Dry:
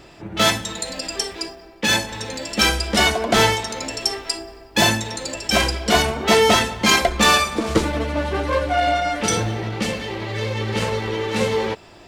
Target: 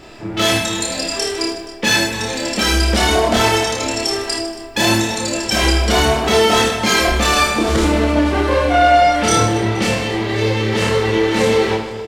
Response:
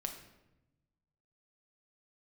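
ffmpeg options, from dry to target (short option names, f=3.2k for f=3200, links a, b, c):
-filter_complex "[0:a]alimiter=limit=-12dB:level=0:latency=1:release=43,asplit=2[a][b];[b]adelay=27,volume=-5dB[c];[a][c]amix=inputs=2:normalize=0,aecho=1:1:30|78|154.8|277.7|474.3:0.631|0.398|0.251|0.158|0.1,asplit=2[d][e];[1:a]atrim=start_sample=2205,asetrate=27783,aresample=44100[f];[e][f]afir=irnorm=-1:irlink=0,volume=-6dB[g];[d][g]amix=inputs=2:normalize=0"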